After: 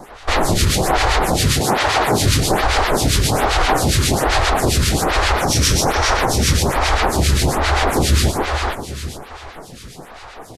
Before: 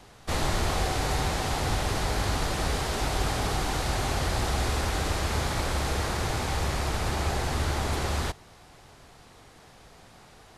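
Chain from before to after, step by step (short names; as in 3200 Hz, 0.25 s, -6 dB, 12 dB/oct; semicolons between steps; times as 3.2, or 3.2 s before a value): 5.38–6.14 bell 5700 Hz +11.5 dB 0.27 oct; feedback echo 0.432 s, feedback 35%, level -5 dB; harmonic tremolo 7.5 Hz, depth 70%, crossover 1600 Hz; 1.59–2.22 HPF 180 Hz -> 59 Hz 12 dB/oct; maximiser +22.5 dB; photocell phaser 1.2 Hz; gain -2 dB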